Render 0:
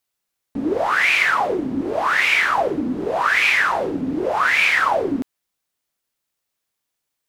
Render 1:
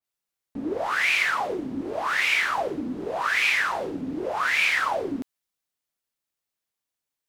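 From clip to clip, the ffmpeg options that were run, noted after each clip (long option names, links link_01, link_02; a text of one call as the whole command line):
ffmpeg -i in.wav -af "adynamicequalizer=threshold=0.0398:dfrequency=2500:dqfactor=0.7:tfrequency=2500:tqfactor=0.7:attack=5:release=100:ratio=0.375:range=2.5:mode=boostabove:tftype=highshelf,volume=-7.5dB" out.wav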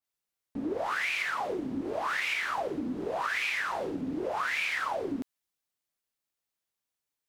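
ffmpeg -i in.wav -af "acompressor=threshold=-26dB:ratio=6,volume=-2dB" out.wav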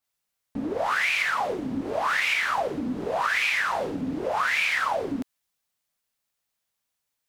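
ffmpeg -i in.wav -af "equalizer=frequency=350:width_type=o:width=0.5:gain=-7,volume=6.5dB" out.wav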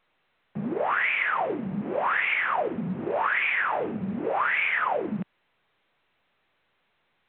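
ffmpeg -i in.wav -af "highpass=frequency=210:width_type=q:width=0.5412,highpass=frequency=210:width_type=q:width=1.307,lowpass=frequency=2800:width_type=q:width=0.5176,lowpass=frequency=2800:width_type=q:width=0.7071,lowpass=frequency=2800:width_type=q:width=1.932,afreqshift=-68" -ar 8000 -c:a pcm_alaw out.wav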